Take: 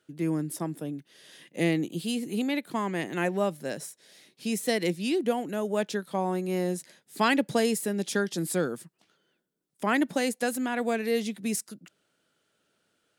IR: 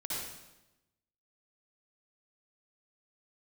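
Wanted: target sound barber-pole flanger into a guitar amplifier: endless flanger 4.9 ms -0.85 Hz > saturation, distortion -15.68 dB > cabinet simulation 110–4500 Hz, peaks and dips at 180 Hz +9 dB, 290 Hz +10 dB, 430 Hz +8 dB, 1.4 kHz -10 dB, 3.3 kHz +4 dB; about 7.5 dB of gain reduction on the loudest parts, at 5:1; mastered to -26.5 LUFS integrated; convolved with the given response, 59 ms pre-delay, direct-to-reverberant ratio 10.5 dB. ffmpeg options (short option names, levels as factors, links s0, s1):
-filter_complex "[0:a]acompressor=threshold=0.0398:ratio=5,asplit=2[s0][s1];[1:a]atrim=start_sample=2205,adelay=59[s2];[s1][s2]afir=irnorm=-1:irlink=0,volume=0.211[s3];[s0][s3]amix=inputs=2:normalize=0,asplit=2[s4][s5];[s5]adelay=4.9,afreqshift=-0.85[s6];[s4][s6]amix=inputs=2:normalize=1,asoftclip=threshold=0.0335,highpass=110,equalizer=f=180:t=q:w=4:g=9,equalizer=f=290:t=q:w=4:g=10,equalizer=f=430:t=q:w=4:g=8,equalizer=f=1400:t=q:w=4:g=-10,equalizer=f=3300:t=q:w=4:g=4,lowpass=f=4500:w=0.5412,lowpass=f=4500:w=1.3066,volume=1.88"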